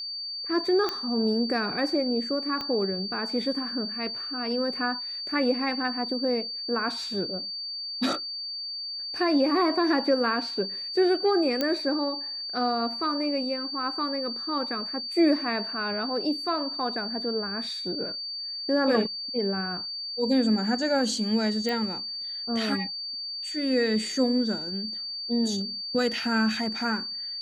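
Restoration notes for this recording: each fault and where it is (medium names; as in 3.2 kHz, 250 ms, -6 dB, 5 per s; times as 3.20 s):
whine 4.6 kHz -32 dBFS
0.89 s: pop -14 dBFS
2.61 s: pop -19 dBFS
11.61 s: pop -12 dBFS
21.69 s: pop -18 dBFS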